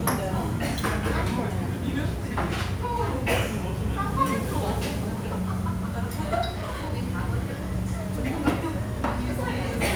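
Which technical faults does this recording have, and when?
6.49–6.93 s: clipped -27.5 dBFS

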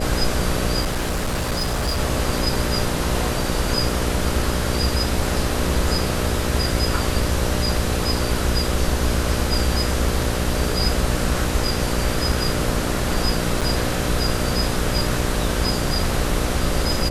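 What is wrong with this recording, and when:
buzz 60 Hz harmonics 10 -26 dBFS
0.81–2.00 s: clipped -18.5 dBFS
13.61–13.62 s: dropout 6.2 ms

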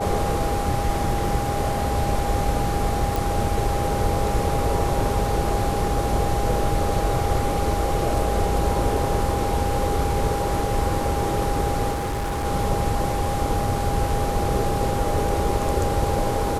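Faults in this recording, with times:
whine 810 Hz -27 dBFS
3.16 s: pop
11.91–12.46 s: clipped -22.5 dBFS

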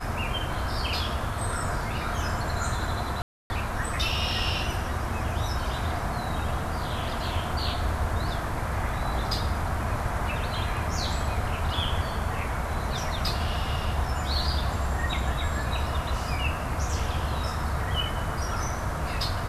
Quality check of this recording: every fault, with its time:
3.22–3.50 s: dropout 280 ms

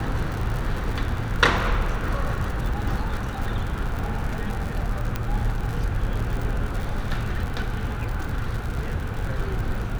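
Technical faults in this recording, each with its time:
crackle 94 per s -28 dBFS
5.16 s: pop -12 dBFS

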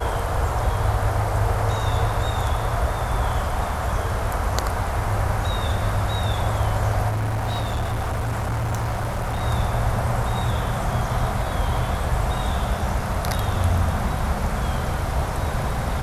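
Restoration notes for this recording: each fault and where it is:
7.08–9.43 s: clipped -21 dBFS

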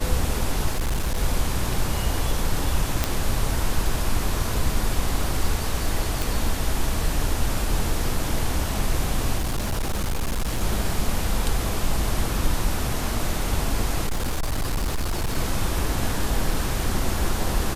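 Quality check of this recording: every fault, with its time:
0.71–1.19 s: clipped -19.5 dBFS
3.04 s: pop -5 dBFS
6.22 s: pop
9.38–10.62 s: clipped -20.5 dBFS
14.06–15.38 s: clipped -20.5 dBFS

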